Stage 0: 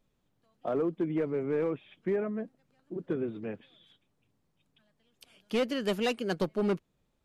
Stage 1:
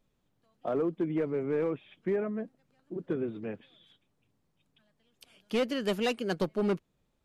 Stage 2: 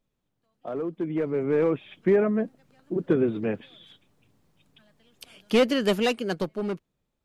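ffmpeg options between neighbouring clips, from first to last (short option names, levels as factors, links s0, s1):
-af anull
-af "dynaudnorm=f=220:g=13:m=5.01,volume=0.631"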